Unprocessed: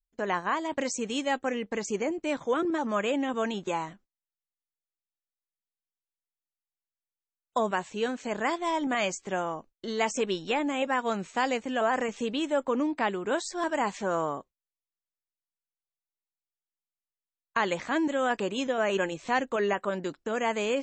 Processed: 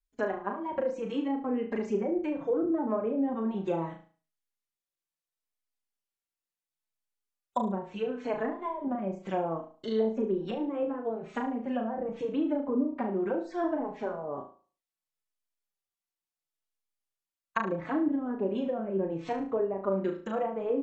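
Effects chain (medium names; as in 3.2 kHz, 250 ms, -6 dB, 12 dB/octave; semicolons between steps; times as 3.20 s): low-pass that closes with the level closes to 420 Hz, closed at -24 dBFS; flutter echo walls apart 6.2 m, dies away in 0.4 s; endless flanger 4.2 ms -0.72 Hz; trim +2.5 dB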